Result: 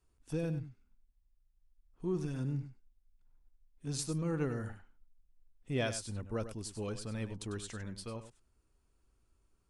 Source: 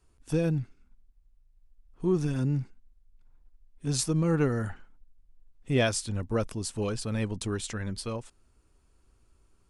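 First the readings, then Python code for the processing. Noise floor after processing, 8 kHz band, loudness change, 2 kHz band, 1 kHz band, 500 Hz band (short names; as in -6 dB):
-74 dBFS, -8.5 dB, -8.5 dB, -8.5 dB, -9.0 dB, -8.5 dB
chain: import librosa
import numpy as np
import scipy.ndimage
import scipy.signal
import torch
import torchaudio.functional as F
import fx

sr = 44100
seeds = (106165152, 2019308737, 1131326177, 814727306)

y = x + 10.0 ** (-11.5 / 20.0) * np.pad(x, (int(98 * sr / 1000.0), 0))[:len(x)]
y = y * 10.0 ** (-9.0 / 20.0)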